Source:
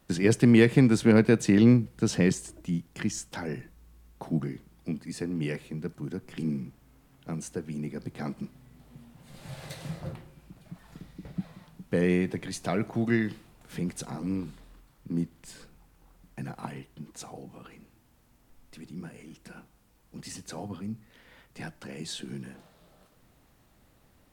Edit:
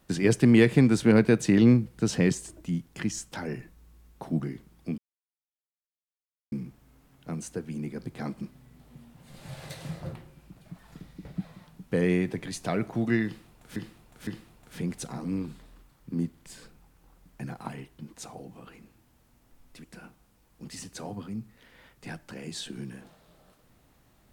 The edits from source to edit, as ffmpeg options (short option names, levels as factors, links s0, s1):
-filter_complex "[0:a]asplit=6[s0][s1][s2][s3][s4][s5];[s0]atrim=end=4.98,asetpts=PTS-STARTPTS,afade=t=out:st=4.976:d=0.004:c=hsin[s6];[s1]atrim=start=4.98:end=6.52,asetpts=PTS-STARTPTS,volume=0[s7];[s2]atrim=start=6.52:end=13.762,asetpts=PTS-STARTPTS,afade=t=in:d=0.004:c=hsin[s8];[s3]atrim=start=13.248:end=13.762[s9];[s4]atrim=start=13.248:end=18.822[s10];[s5]atrim=start=19.368[s11];[s6][s7][s8]concat=n=3:v=0:a=1[s12];[s12][s9]acrossfade=d=0.004:c1=hsin:c2=hsin[s13];[s13][s10]acrossfade=d=0.004:c1=hsin:c2=hsin[s14];[s14][s11]acrossfade=d=0.004:c1=hsin:c2=hsin"